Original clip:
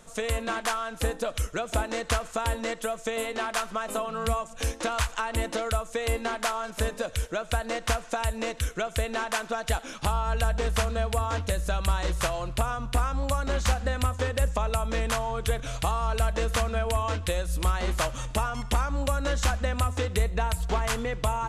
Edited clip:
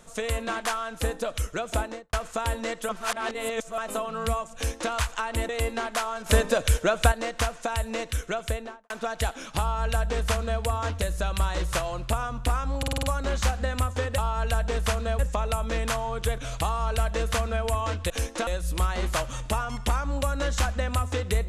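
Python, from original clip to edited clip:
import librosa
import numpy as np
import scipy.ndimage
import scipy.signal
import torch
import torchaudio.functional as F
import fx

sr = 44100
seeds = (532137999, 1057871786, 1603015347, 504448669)

y = fx.studio_fade_out(x, sr, start_s=1.78, length_s=0.35)
y = fx.studio_fade_out(y, sr, start_s=8.9, length_s=0.48)
y = fx.edit(y, sr, fx.reverse_span(start_s=2.89, length_s=0.89),
    fx.duplicate(start_s=4.55, length_s=0.37, to_s=17.32),
    fx.cut(start_s=5.49, length_s=0.48),
    fx.clip_gain(start_s=6.74, length_s=0.86, db=7.5),
    fx.duplicate(start_s=10.08, length_s=1.01, to_s=14.41),
    fx.stutter(start_s=13.26, slice_s=0.05, count=6), tone=tone)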